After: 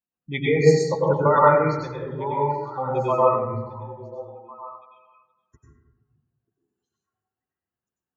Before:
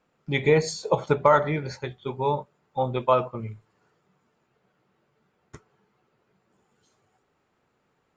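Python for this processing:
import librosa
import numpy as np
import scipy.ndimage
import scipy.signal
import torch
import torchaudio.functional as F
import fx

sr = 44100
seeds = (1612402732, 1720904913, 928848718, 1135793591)

y = fx.bin_expand(x, sr, power=1.5)
y = scipy.signal.sosfilt(scipy.signal.butter(2, 43.0, 'highpass', fs=sr, output='sos'), y)
y = fx.spec_gate(y, sr, threshold_db=-25, keep='strong')
y = fx.echo_stepped(y, sr, ms=467, hz=150.0, octaves=1.4, feedback_pct=70, wet_db=-10.5)
y = fx.rev_plate(y, sr, seeds[0], rt60_s=1.1, hf_ratio=0.3, predelay_ms=85, drr_db=-5.0)
y = y * librosa.db_to_amplitude(-1.5)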